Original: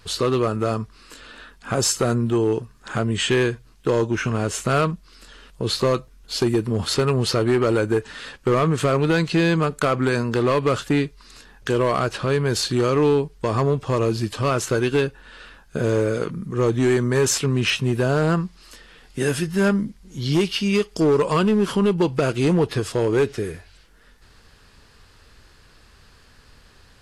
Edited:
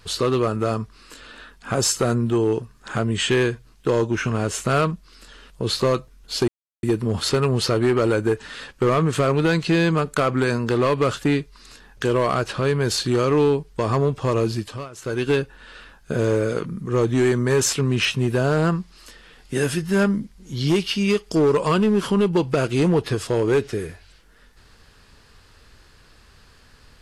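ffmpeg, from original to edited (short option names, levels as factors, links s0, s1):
-filter_complex "[0:a]asplit=4[s0][s1][s2][s3];[s0]atrim=end=6.48,asetpts=PTS-STARTPTS,afade=t=out:st=6.476:d=0.004:c=hsin,apad=pad_dur=0.35[s4];[s1]atrim=start=6.48:end=14.54,asetpts=PTS-STARTPTS,afade=t=in:d=0.004:c=hsin,afade=t=out:st=7.67:d=0.39:silence=0.1[s5];[s2]atrim=start=14.54:end=14.57,asetpts=PTS-STARTPTS,volume=0.1[s6];[s3]atrim=start=14.57,asetpts=PTS-STARTPTS,afade=t=in:d=0.39:silence=0.1[s7];[s4][s5][s6][s7]concat=n=4:v=0:a=1"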